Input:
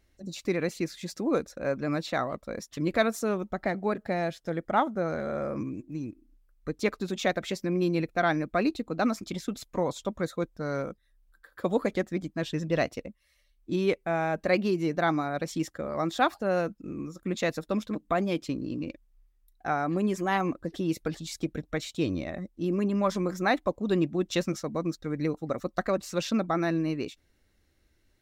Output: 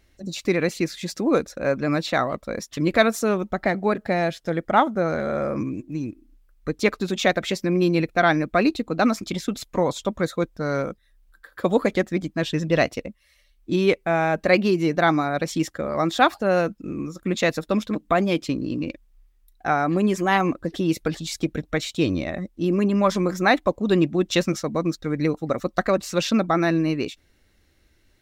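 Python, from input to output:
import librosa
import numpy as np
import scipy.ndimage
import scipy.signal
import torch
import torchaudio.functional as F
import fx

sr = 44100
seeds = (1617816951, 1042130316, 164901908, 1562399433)

y = fx.peak_eq(x, sr, hz=2800.0, db=2.5, octaves=1.6)
y = y * librosa.db_to_amplitude(6.5)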